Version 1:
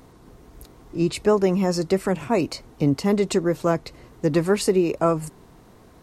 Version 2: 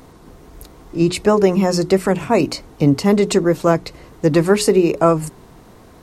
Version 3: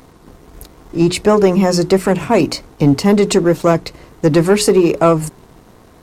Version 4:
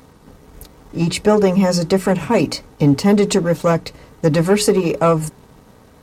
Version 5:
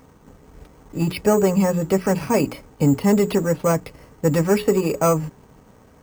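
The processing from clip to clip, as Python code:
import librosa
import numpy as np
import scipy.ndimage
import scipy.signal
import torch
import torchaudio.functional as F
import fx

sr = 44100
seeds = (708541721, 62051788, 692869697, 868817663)

y1 = fx.hum_notches(x, sr, base_hz=60, count=7)
y1 = y1 * 10.0 ** (6.5 / 20.0)
y2 = fx.leveller(y1, sr, passes=1)
y3 = fx.notch_comb(y2, sr, f0_hz=350.0)
y3 = y3 * 10.0 ** (-1.0 / 20.0)
y4 = np.repeat(scipy.signal.resample_poly(y3, 1, 6), 6)[:len(y3)]
y4 = y4 * 10.0 ** (-3.5 / 20.0)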